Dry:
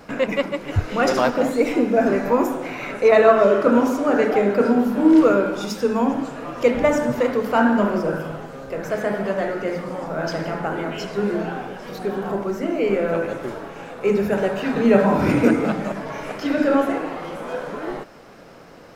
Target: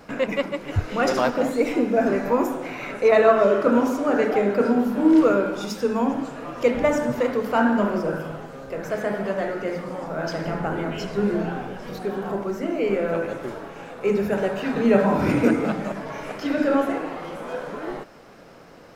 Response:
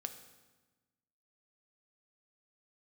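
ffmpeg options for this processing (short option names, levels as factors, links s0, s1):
-filter_complex "[0:a]asettb=1/sr,asplit=3[s0][s1][s2];[s0]atrim=end=10.444[s3];[s1]atrim=start=10.44:end=11.99,asetpts=PTS-STARTPTS,afade=t=in:d=0.004:c=qsin,afade=t=out:st=1.546:d=0.004:c=qsin,lowshelf=f=180:g=8.5[s4];[s2]atrim=start=11.986[s5];[s3][s4]acrossfade=d=0.004:c1=hsin:c2=qsin[s6];[s6][s5]acrossfade=d=0.004:c1=qsin:c2=hsin,volume=0.75"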